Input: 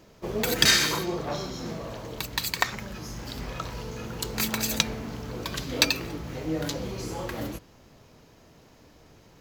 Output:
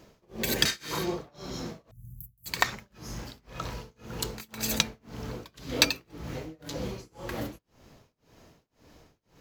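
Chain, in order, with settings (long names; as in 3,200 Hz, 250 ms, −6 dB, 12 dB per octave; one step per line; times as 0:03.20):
0:00.33–0:00.59: healed spectral selection 320–1,500 Hz before
0:01.91–0:02.46: inverse Chebyshev band-stop filter 540–3,400 Hz, stop band 70 dB
amplitude tremolo 1.9 Hz, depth 98%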